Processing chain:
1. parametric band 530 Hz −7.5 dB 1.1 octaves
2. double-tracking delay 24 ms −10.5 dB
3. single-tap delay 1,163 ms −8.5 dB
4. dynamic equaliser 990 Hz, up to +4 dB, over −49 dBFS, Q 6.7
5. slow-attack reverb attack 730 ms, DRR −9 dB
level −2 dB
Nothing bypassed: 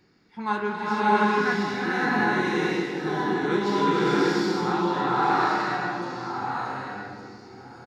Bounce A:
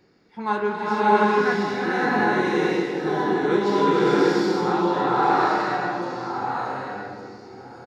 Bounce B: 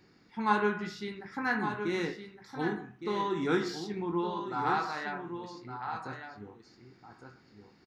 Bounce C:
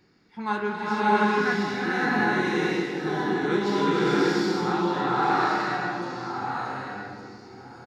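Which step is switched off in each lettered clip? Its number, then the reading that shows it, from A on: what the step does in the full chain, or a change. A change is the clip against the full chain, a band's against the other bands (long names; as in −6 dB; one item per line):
1, 500 Hz band +4.5 dB
5, change in momentary loudness spread +4 LU
4, change in momentary loudness spread +1 LU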